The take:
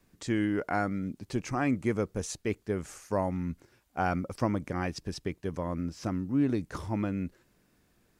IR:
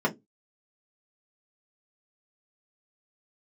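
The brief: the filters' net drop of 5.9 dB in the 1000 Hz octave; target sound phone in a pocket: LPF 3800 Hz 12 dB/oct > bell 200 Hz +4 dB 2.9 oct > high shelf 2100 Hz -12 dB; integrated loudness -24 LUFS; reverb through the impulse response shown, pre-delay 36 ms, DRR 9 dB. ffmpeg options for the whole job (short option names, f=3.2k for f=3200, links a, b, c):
-filter_complex "[0:a]equalizer=f=1k:t=o:g=-8,asplit=2[a][b];[1:a]atrim=start_sample=2205,adelay=36[c];[b][c]afir=irnorm=-1:irlink=0,volume=-21dB[d];[a][d]amix=inputs=2:normalize=0,lowpass=3.8k,equalizer=f=200:t=o:w=2.9:g=4,highshelf=f=2.1k:g=-12,volume=5.5dB"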